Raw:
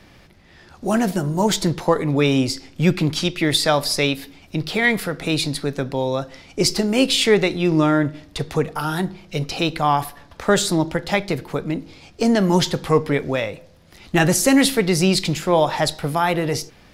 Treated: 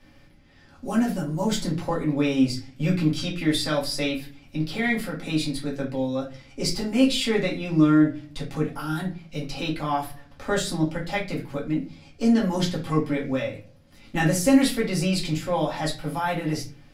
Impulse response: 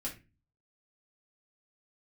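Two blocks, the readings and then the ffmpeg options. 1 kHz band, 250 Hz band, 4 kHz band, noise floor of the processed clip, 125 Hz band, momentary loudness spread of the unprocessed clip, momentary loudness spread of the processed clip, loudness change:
−7.5 dB, −2.5 dB, −7.5 dB, −52 dBFS, −5.0 dB, 10 LU, 11 LU, −5.0 dB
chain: -filter_complex "[1:a]atrim=start_sample=2205[link_01];[0:a][link_01]afir=irnorm=-1:irlink=0,volume=-7.5dB"

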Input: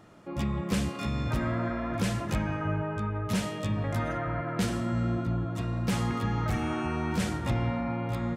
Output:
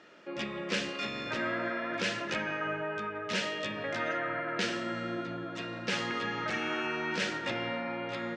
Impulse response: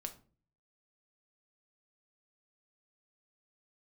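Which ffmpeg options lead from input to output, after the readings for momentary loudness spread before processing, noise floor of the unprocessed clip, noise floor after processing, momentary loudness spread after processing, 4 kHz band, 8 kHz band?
3 LU, −37 dBFS, −40 dBFS, 5 LU, +5.0 dB, −3.5 dB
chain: -filter_complex "[0:a]highpass=440,equalizer=frequency=760:width_type=q:width=4:gain=-10,equalizer=frequency=1100:width_type=q:width=4:gain=-8,equalizer=frequency=1700:width_type=q:width=4:gain=4,equalizer=frequency=2700:width_type=q:width=4:gain=4,lowpass=frequency=5900:width=0.5412,lowpass=frequency=5900:width=1.3066,asplit=2[link_01][link_02];[1:a]atrim=start_sample=2205[link_03];[link_02][link_03]afir=irnorm=-1:irlink=0,volume=-2dB[link_04];[link_01][link_04]amix=inputs=2:normalize=0"

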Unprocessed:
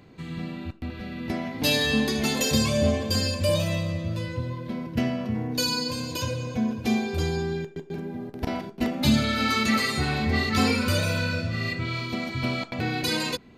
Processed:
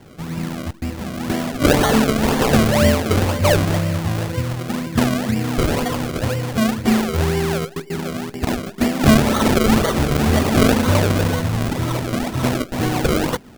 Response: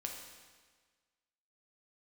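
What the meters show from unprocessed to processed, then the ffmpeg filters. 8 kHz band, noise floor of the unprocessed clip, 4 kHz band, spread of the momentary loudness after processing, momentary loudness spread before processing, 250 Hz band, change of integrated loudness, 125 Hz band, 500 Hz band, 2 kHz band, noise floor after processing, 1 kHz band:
+6.0 dB, −48 dBFS, +1.5 dB, 11 LU, 12 LU, +8.5 dB, +7.5 dB, +8.5 dB, +9.5 dB, +4.5 dB, −40 dBFS, +9.5 dB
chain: -af "acrusher=samples=34:mix=1:aa=0.000001:lfo=1:lforange=34:lforate=2,volume=8dB"

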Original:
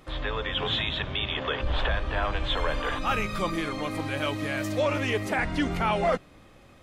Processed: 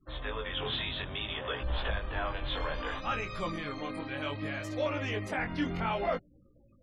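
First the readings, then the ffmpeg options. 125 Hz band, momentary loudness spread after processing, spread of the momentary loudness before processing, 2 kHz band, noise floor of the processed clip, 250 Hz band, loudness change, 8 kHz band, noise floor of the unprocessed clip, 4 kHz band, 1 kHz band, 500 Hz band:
−6.0 dB, 5 LU, 4 LU, −6.5 dB, −62 dBFS, −6.5 dB, −6.5 dB, −11.0 dB, −53 dBFS, −6.5 dB, −6.5 dB, −6.5 dB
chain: -af "afftfilt=real='re*gte(hypot(re,im),0.00708)':imag='im*gte(hypot(re,im),0.00708)':win_size=1024:overlap=0.75,flanger=delay=16.5:depth=7:speed=0.62,volume=-3.5dB"

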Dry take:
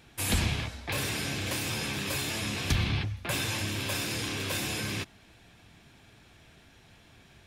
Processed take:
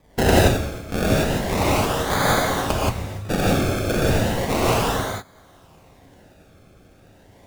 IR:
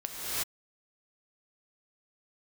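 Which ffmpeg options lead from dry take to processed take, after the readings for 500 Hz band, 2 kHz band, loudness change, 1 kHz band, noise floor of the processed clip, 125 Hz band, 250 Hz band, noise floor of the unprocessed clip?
+18.0 dB, +7.0 dB, +9.5 dB, +17.0 dB, −52 dBFS, +9.5 dB, +13.0 dB, −58 dBFS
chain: -filter_complex "[0:a]aexciter=amount=11.3:drive=4.1:freq=5600,acrusher=samples=31:mix=1:aa=0.000001:lfo=1:lforange=31:lforate=0.34[link_01];[1:a]atrim=start_sample=2205,afade=type=out:start_time=0.36:duration=0.01,atrim=end_sample=16317,asetrate=74970,aresample=44100[link_02];[link_01][link_02]afir=irnorm=-1:irlink=0"

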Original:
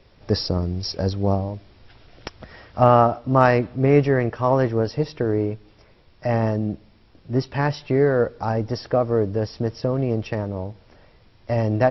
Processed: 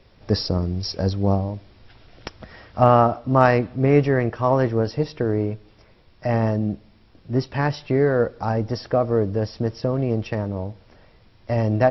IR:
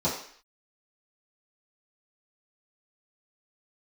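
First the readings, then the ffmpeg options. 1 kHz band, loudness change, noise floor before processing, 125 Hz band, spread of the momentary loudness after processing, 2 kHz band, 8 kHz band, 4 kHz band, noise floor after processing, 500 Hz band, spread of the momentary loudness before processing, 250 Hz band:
0.0 dB, 0.0 dB, −54 dBFS, +0.5 dB, 13 LU, 0.0 dB, can't be measured, 0.0 dB, −54 dBFS, −0.5 dB, 15 LU, +0.5 dB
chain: -filter_complex "[0:a]asplit=2[link_01][link_02];[1:a]atrim=start_sample=2205,asetrate=52920,aresample=44100[link_03];[link_02][link_03]afir=irnorm=-1:irlink=0,volume=-31dB[link_04];[link_01][link_04]amix=inputs=2:normalize=0"

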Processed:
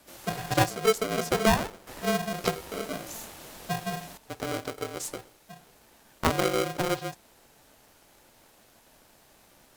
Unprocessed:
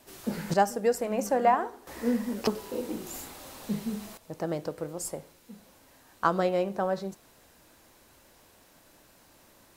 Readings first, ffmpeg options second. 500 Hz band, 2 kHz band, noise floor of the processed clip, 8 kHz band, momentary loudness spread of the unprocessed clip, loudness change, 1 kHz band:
−0.5 dB, +6.0 dB, −60 dBFS, +4.5 dB, 14 LU, +0.5 dB, −1.5 dB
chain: -af "afreqshift=-480,aeval=exprs='val(0)*sgn(sin(2*PI*440*n/s))':channel_layout=same"

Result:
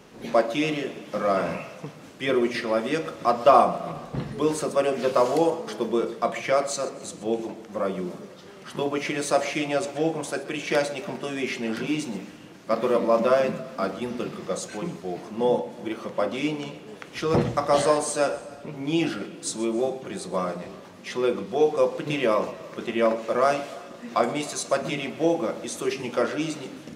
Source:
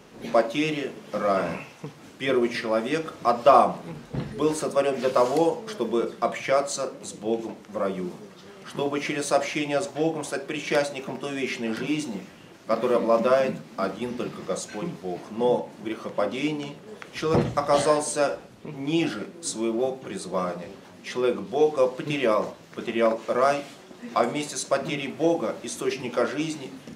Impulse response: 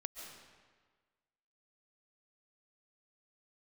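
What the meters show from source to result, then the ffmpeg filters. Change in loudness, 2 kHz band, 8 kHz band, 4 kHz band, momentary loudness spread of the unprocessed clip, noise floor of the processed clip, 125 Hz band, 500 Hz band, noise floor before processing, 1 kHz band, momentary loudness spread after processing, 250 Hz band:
0.0 dB, 0.0 dB, 0.0 dB, 0.0 dB, 13 LU, −45 dBFS, 0.0 dB, 0.0 dB, −48 dBFS, 0.0 dB, 13 LU, 0.0 dB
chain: -filter_complex "[0:a]asplit=2[link_01][link_02];[1:a]atrim=start_sample=2205,adelay=128[link_03];[link_02][link_03]afir=irnorm=-1:irlink=0,volume=-12.5dB[link_04];[link_01][link_04]amix=inputs=2:normalize=0"

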